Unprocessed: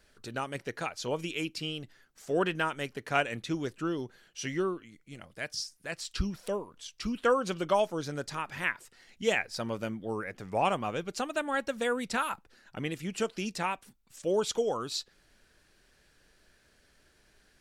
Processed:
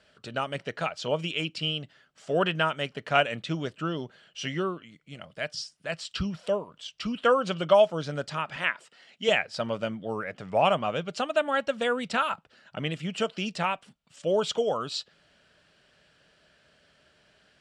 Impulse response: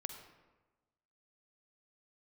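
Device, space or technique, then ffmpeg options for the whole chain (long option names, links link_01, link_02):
car door speaker: -filter_complex "[0:a]highpass=84,equalizer=frequency=160:width_type=q:width=4:gain=6,equalizer=frequency=340:width_type=q:width=4:gain=-4,equalizer=frequency=620:width_type=q:width=4:gain=8,equalizer=frequency=1300:width_type=q:width=4:gain=4,equalizer=frequency=3000:width_type=q:width=4:gain=8,equalizer=frequency=6300:width_type=q:width=4:gain=-6,lowpass=frequency=7800:width=0.5412,lowpass=frequency=7800:width=1.3066,asettb=1/sr,asplit=3[link_01][link_02][link_03];[link_01]atrim=end=8.564[link_04];[link_02]atrim=start=8.56:end=9.29,asetpts=PTS-STARTPTS,afade=type=in:duration=0.004:curve=qsin,afade=type=out:start_time=0.726:duration=0.004:curve=qsin,highpass=230[link_05];[link_03]atrim=start=9.286[link_06];[link_04][link_05]acrossfade=duration=0.004:curve1=hsin:curve2=qsin[link_07];[link_07][link_06]acrossfade=duration=0.004:curve1=qsin:curve2=hsin,volume=1.5dB"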